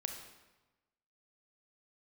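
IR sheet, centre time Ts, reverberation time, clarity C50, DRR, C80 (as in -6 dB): 31 ms, 1.1 s, 5.5 dB, 4.0 dB, 7.5 dB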